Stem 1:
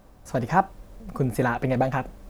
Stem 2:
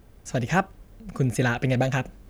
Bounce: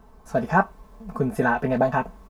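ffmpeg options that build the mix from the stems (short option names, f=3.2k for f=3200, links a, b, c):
-filter_complex "[0:a]flanger=delay=16.5:depth=5.7:speed=0.94,highpass=f=1k:t=q:w=1.5,volume=-3dB[a];[1:a]lowpass=f=1k:t=q:w=5.8,adelay=0.9,volume=-2dB[b];[a][b]amix=inputs=2:normalize=0,aecho=1:1:4.6:0.71"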